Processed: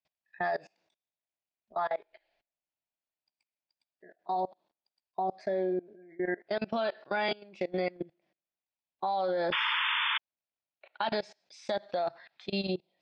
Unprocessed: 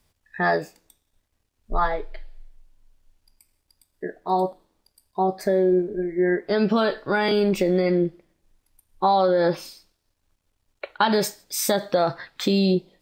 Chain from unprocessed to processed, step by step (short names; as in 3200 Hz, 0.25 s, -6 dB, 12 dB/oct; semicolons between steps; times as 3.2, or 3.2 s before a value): speaker cabinet 240–5200 Hz, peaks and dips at 280 Hz -9 dB, 450 Hz -8 dB, 680 Hz +7 dB, 1200 Hz -4 dB, 2500 Hz +5 dB; painted sound noise, 9.52–10.18, 850–3600 Hz -12 dBFS; level quantiser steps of 24 dB; gain -5.5 dB